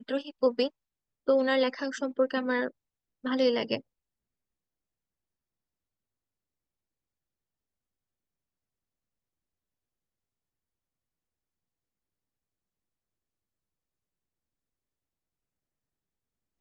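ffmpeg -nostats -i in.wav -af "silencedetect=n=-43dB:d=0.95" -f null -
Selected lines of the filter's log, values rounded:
silence_start: 3.80
silence_end: 16.60 | silence_duration: 12.80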